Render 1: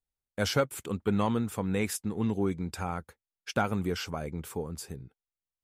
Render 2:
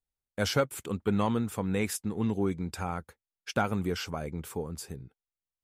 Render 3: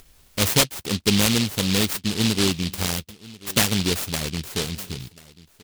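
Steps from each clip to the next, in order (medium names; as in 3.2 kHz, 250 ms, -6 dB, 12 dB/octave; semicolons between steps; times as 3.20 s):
no audible change
upward compressor, threshold -36 dBFS; delay 1038 ms -21 dB; delay time shaken by noise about 3.5 kHz, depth 0.36 ms; trim +8 dB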